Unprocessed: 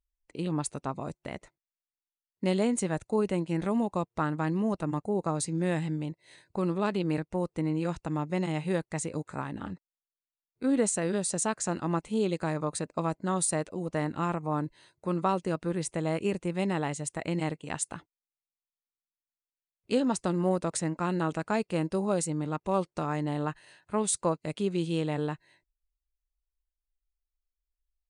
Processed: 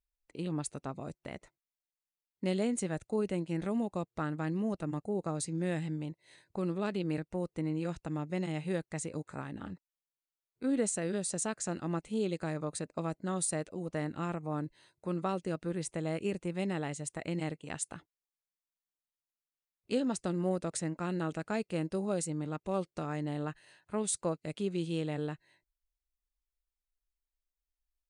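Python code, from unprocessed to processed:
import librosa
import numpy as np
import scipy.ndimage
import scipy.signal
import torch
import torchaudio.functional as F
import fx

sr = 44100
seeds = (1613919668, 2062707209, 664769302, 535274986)

y = fx.dynamic_eq(x, sr, hz=980.0, q=2.8, threshold_db=-48.0, ratio=4.0, max_db=-7)
y = F.gain(torch.from_numpy(y), -4.5).numpy()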